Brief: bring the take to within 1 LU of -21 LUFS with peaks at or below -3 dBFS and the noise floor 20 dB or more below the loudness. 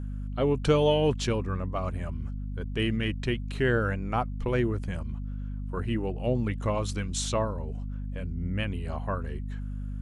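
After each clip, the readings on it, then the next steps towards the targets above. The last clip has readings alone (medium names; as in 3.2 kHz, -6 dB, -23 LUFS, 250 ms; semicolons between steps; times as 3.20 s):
hum 50 Hz; highest harmonic 250 Hz; hum level -32 dBFS; loudness -30.0 LUFS; peak level -11.5 dBFS; loudness target -21.0 LUFS
-> hum notches 50/100/150/200/250 Hz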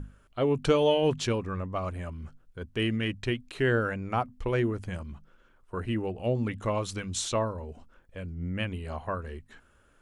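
hum not found; loudness -30.0 LUFS; peak level -12.5 dBFS; loudness target -21.0 LUFS
-> trim +9 dB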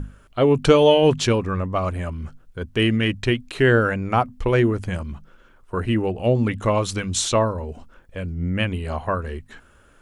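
loudness -21.0 LUFS; peak level -3.5 dBFS; noise floor -53 dBFS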